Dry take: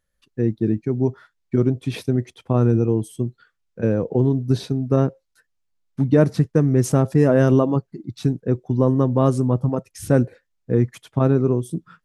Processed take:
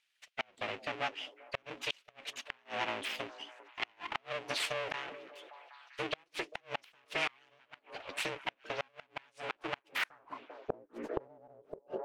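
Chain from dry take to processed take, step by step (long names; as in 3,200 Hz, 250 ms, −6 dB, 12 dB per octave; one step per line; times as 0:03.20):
high-pass filter 88 Hz 6 dB per octave
high-shelf EQ 2,500 Hz +8 dB
downward compressor 16 to 1, threshold −19 dBFS, peak gain reduction 11.5 dB
flanger 0.44 Hz, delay 2 ms, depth 9 ms, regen +33%
frequency shifter +26 Hz
full-wave rectification
band-pass filter sweep 2,700 Hz → 470 Hz, 0:09.86–0:10.64
echo through a band-pass that steps 197 ms, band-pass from 270 Hz, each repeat 0.7 octaves, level −12 dB
gate with flip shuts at −37 dBFS, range −33 dB
0:04.75–0:06.07: level that may fall only so fast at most 43 dB per second
level +16.5 dB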